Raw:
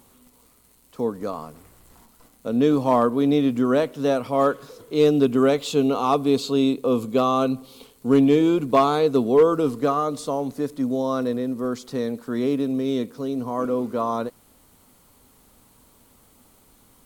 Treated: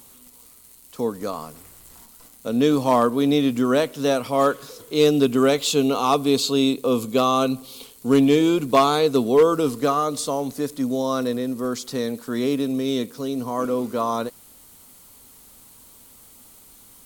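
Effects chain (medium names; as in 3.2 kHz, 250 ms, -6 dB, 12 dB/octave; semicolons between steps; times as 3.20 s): treble shelf 2.6 kHz +10.5 dB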